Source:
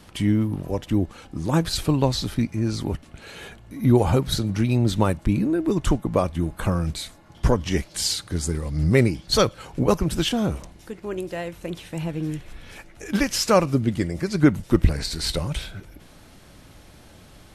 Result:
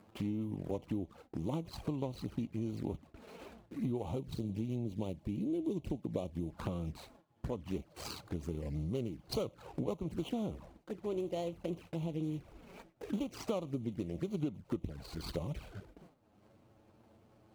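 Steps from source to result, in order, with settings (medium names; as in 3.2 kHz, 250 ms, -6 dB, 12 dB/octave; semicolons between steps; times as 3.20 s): median filter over 25 samples; gate with hold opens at -36 dBFS; high-pass 43 Hz 12 dB/octave; upward compressor, threshold -41 dBFS; 4.18–6.50 s: peaking EQ 1.3 kHz -10.5 dB 0.96 oct; compression 12:1, threshold -28 dBFS, peak gain reduction 18 dB; bass shelf 130 Hz -10.5 dB; touch-sensitive flanger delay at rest 11.7 ms, full sweep at -32.5 dBFS; trim -1.5 dB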